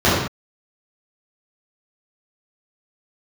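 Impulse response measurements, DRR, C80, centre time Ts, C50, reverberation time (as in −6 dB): −11.0 dB, 3.0 dB, 67 ms, −0.5 dB, non-exponential decay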